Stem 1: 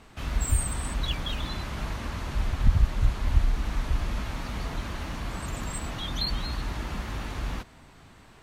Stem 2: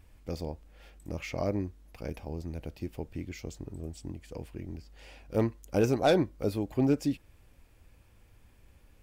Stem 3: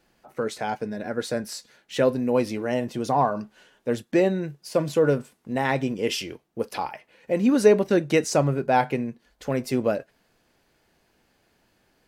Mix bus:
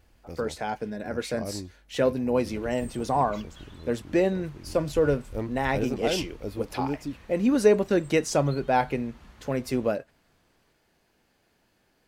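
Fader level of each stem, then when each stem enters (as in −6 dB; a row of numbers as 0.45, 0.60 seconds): −18.0, −5.0, −2.5 decibels; 2.30, 0.00, 0.00 seconds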